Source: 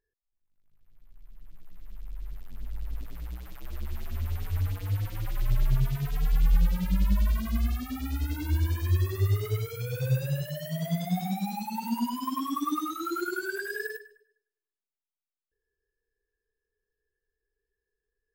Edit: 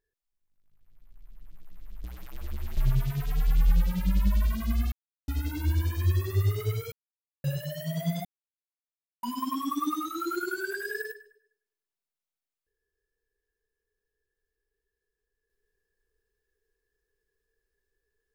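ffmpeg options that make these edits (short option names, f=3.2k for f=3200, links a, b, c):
-filter_complex "[0:a]asplit=9[a][b][c][d][e][f][g][h][i];[a]atrim=end=2.042[j];[b]atrim=start=3.328:end=4.062[k];[c]atrim=start=5.618:end=7.77,asetpts=PTS-STARTPTS,afade=t=out:st=2.148:d=0.004:c=hsin[l];[d]atrim=start=7.77:end=8.13,asetpts=PTS-STARTPTS,volume=0[m];[e]atrim=start=8.13:end=9.77,asetpts=PTS-STARTPTS,afade=t=in:d=0.004:c=hsin,afade=t=out:st=1.636:d=0.004:c=hsin[n];[f]atrim=start=9.77:end=10.29,asetpts=PTS-STARTPTS,volume=0[o];[g]atrim=start=10.29:end=11.1,asetpts=PTS-STARTPTS,afade=t=in:d=0.004:c=hsin,afade=t=out:st=0.806:d=0.004:c=hsin[p];[h]atrim=start=11.1:end=12.08,asetpts=PTS-STARTPTS,volume=0[q];[i]atrim=start=12.08,asetpts=PTS-STARTPTS,afade=t=in:d=0.004:c=hsin[r];[j][k]acrossfade=d=0.004:c1=hsin:c2=hsin[s];[l][m][n][o][p][q][r]concat=n=7:v=0:a=1[t];[s][t]acrossfade=d=0.004:c1=hsin:c2=hsin"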